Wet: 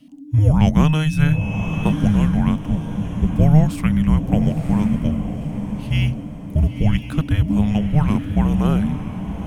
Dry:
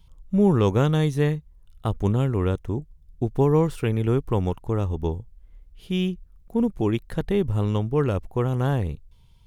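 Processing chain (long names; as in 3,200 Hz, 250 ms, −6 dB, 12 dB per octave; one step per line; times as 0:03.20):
feedback delay with all-pass diffusion 983 ms, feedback 42%, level −8 dB
0:00.85–0:01.91: steady tone 2,900 Hz −39 dBFS
frequency shifter −310 Hz
level +5.5 dB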